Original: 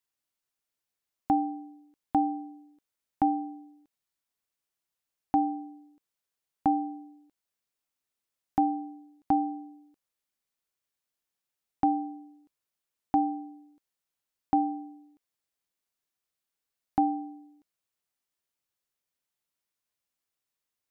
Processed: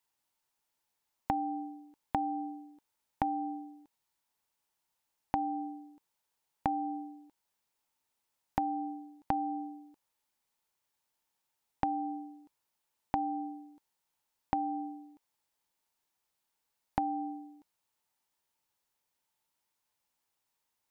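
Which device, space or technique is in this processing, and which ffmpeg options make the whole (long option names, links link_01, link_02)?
serial compression, peaks first: -af "equalizer=frequency=890:width=4.8:gain=11,acompressor=threshold=-29dB:ratio=5,acompressor=threshold=-38dB:ratio=1.5,volume=3.5dB"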